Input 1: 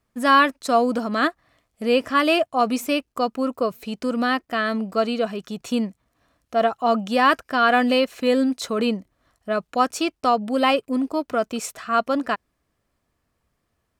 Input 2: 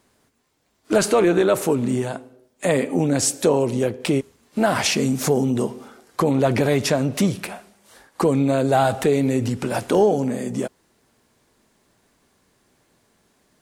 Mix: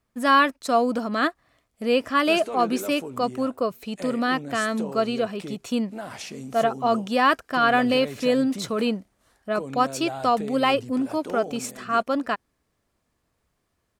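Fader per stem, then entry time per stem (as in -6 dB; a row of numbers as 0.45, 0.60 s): -2.0, -16.5 dB; 0.00, 1.35 s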